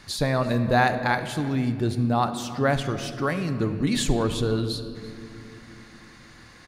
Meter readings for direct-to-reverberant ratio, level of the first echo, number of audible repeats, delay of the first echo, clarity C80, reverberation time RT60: 8.5 dB, -19.5 dB, 1, 337 ms, 10.5 dB, 2.5 s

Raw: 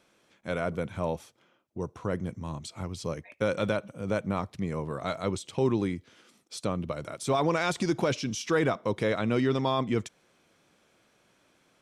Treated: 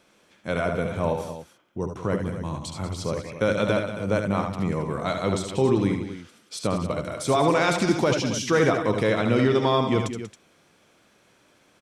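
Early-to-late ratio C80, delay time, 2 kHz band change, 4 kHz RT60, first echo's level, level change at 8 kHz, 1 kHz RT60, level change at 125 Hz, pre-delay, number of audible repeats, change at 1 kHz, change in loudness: no reverb, 70 ms, +6.0 dB, no reverb, -7.5 dB, +6.0 dB, no reverb, +5.5 dB, no reverb, 3, +6.0 dB, +6.0 dB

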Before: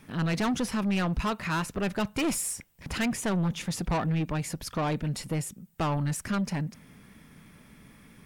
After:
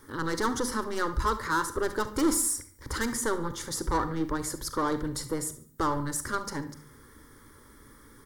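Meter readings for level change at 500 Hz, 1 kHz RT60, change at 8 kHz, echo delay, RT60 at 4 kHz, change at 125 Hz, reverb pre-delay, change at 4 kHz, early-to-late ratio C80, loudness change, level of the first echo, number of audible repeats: +2.5 dB, 0.50 s, +4.5 dB, 72 ms, 0.40 s, -8.5 dB, 36 ms, -1.0 dB, 16.5 dB, 0.0 dB, -16.0 dB, 3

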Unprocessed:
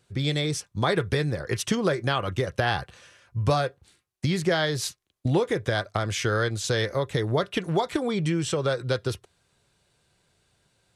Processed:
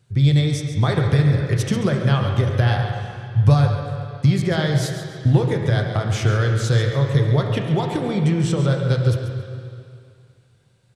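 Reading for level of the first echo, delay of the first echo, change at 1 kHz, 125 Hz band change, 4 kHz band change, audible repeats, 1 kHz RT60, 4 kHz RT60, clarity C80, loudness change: -11.5 dB, 138 ms, +1.5 dB, +12.5 dB, +0.5 dB, 1, 2.4 s, 2.4 s, 4.0 dB, +7.0 dB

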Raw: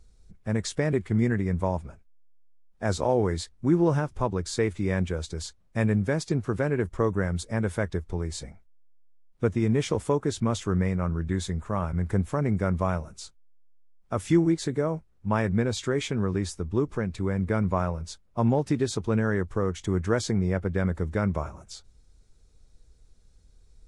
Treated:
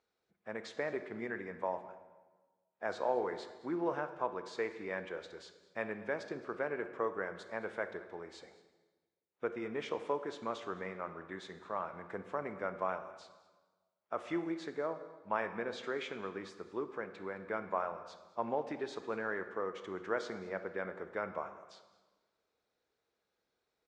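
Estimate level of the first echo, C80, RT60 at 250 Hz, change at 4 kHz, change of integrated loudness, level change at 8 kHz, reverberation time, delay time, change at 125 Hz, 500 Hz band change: -20.0 dB, 12.0 dB, 1.5 s, -12.5 dB, -12.5 dB, under -20 dB, 1.3 s, 214 ms, -28.5 dB, -9.5 dB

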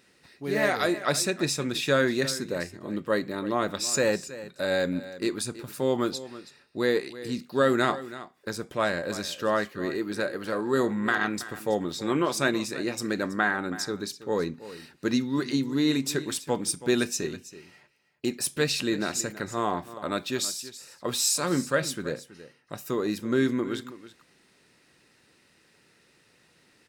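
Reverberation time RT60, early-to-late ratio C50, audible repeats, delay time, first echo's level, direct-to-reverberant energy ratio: no reverb, no reverb, 1, 326 ms, -15.5 dB, no reverb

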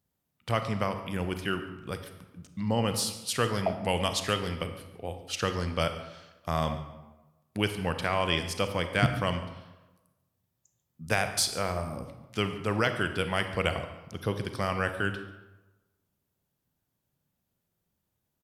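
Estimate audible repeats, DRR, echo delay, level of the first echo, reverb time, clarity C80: 1, 7.5 dB, 142 ms, -19.0 dB, 1.1 s, 10.5 dB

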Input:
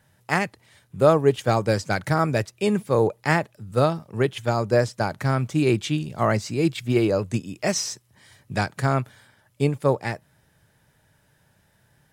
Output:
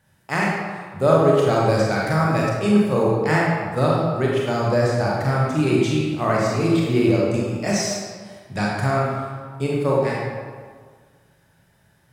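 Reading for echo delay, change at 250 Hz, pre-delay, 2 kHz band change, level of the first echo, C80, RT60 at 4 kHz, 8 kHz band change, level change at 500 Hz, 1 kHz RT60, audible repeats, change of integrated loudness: no echo, +4.5 dB, 27 ms, +3.0 dB, no echo, 1.0 dB, 1.0 s, +1.0 dB, +3.0 dB, 1.7 s, no echo, +3.0 dB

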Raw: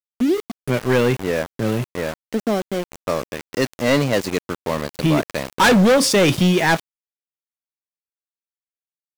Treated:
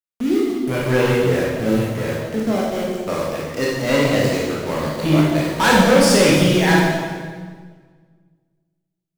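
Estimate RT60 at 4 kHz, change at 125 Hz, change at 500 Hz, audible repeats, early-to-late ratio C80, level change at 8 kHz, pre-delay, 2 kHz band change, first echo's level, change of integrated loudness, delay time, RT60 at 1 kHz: 1.4 s, +2.5 dB, +2.0 dB, no echo, 2.0 dB, +1.5 dB, 19 ms, +1.5 dB, no echo, +1.5 dB, no echo, 1.5 s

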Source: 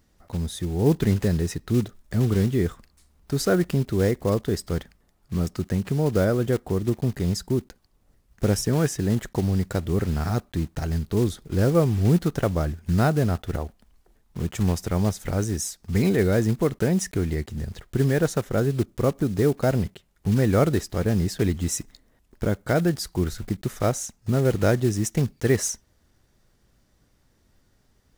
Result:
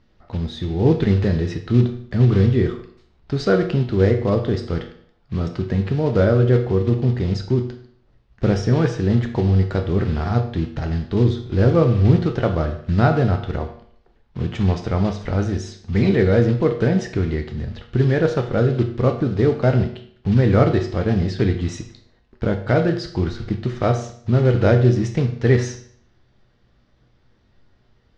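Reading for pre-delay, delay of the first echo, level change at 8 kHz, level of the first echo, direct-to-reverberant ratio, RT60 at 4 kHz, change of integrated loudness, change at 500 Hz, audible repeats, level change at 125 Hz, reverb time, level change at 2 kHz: 9 ms, no echo, under -10 dB, no echo, 4.5 dB, 0.55 s, +4.5 dB, +4.5 dB, no echo, +5.5 dB, 0.55 s, +4.0 dB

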